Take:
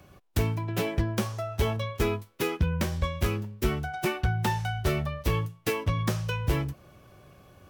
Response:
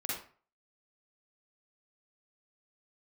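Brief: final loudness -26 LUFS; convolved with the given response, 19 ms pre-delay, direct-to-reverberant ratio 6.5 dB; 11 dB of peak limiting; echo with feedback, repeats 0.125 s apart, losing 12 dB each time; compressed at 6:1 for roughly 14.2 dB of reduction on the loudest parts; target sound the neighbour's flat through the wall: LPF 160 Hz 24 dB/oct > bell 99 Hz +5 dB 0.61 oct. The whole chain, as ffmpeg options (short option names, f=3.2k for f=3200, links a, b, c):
-filter_complex "[0:a]acompressor=threshold=-37dB:ratio=6,alimiter=level_in=9dB:limit=-24dB:level=0:latency=1,volume=-9dB,aecho=1:1:125|250|375:0.251|0.0628|0.0157,asplit=2[a][b];[1:a]atrim=start_sample=2205,adelay=19[c];[b][c]afir=irnorm=-1:irlink=0,volume=-9.5dB[d];[a][d]amix=inputs=2:normalize=0,lowpass=f=160:w=0.5412,lowpass=f=160:w=1.3066,equalizer=f=99:t=o:w=0.61:g=5,volume=16.5dB"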